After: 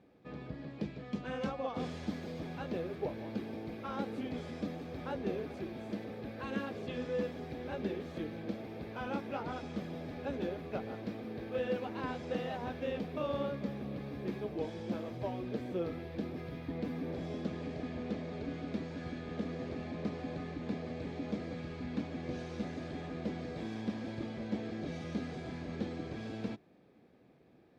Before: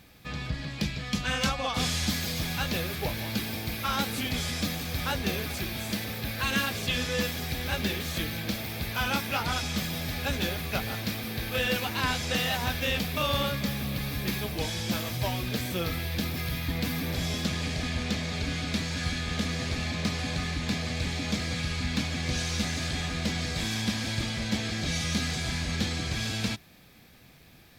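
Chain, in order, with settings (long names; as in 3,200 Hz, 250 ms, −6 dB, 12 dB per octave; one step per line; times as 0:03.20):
resonant band-pass 390 Hz, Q 1.4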